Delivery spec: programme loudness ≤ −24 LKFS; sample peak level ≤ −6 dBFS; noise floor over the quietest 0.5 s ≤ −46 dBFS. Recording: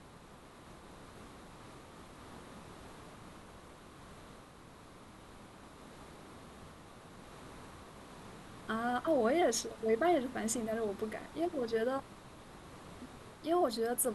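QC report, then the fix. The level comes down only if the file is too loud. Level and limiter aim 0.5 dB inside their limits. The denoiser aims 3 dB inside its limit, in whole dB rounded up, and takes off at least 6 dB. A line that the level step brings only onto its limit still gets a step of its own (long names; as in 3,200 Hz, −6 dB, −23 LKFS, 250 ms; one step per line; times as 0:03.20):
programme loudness −34.0 LKFS: in spec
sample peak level −17.5 dBFS: in spec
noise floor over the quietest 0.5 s −55 dBFS: in spec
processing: no processing needed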